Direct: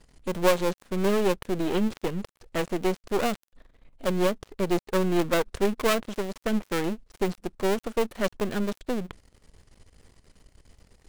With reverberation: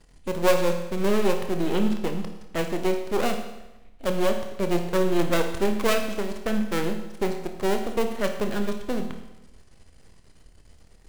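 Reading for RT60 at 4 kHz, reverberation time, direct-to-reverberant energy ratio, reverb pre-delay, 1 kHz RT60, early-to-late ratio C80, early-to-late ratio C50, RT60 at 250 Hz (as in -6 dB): 0.95 s, 1.0 s, 4.5 dB, 24 ms, 0.95 s, 9.5 dB, 7.0 dB, 1.0 s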